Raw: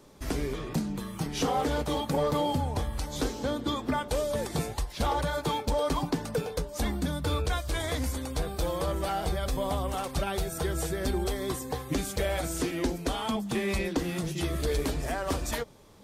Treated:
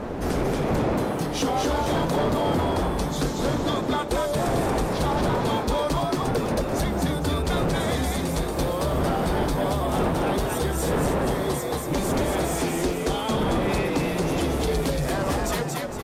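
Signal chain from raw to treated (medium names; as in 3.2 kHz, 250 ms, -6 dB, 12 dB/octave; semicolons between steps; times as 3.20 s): wind noise 520 Hz -28 dBFS; compression, threshold -23 dBFS, peak gain reduction 12 dB; frequency-shifting echo 231 ms, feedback 39%, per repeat +97 Hz, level -3 dB; Chebyshev shaper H 5 -18 dB, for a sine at -12.5 dBFS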